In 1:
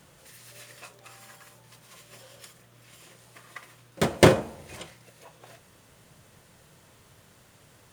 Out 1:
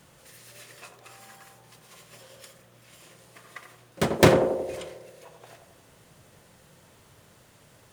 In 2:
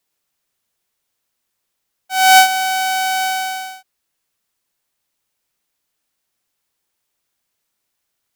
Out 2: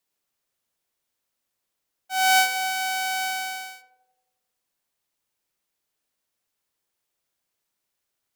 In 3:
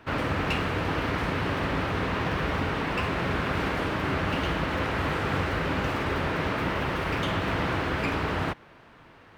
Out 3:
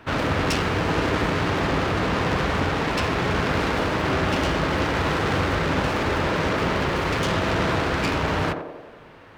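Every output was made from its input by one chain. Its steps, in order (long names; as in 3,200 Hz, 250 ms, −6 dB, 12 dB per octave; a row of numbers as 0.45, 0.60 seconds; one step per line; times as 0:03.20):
phase distortion by the signal itself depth 0.19 ms
feedback echo with a band-pass in the loop 89 ms, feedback 67%, band-pass 480 Hz, level −4 dB
loudness normalisation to −23 LKFS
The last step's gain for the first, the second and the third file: 0.0, −6.0, +4.5 decibels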